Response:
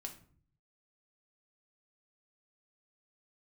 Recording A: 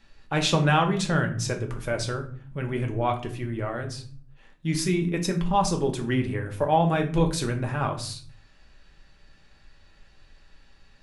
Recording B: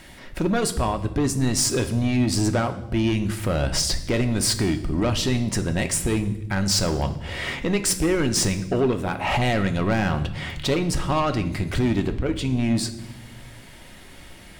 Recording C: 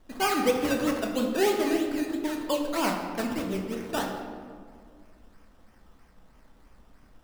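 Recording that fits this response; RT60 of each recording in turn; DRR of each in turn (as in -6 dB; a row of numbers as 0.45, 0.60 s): A; 0.50 s, not exponential, 2.0 s; 3.0, 7.0, 1.0 dB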